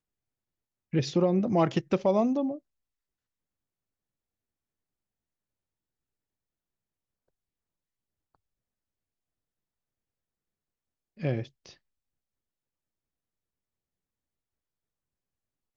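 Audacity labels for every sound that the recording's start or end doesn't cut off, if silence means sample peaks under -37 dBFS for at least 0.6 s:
0.930000	2.560000	sound
11.210000	11.660000	sound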